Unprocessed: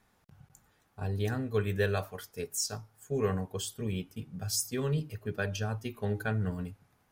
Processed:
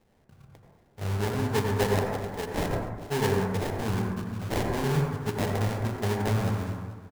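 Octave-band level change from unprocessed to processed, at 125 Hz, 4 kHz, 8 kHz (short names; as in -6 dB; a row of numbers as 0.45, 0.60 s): +5.5, +2.0, -4.5 dB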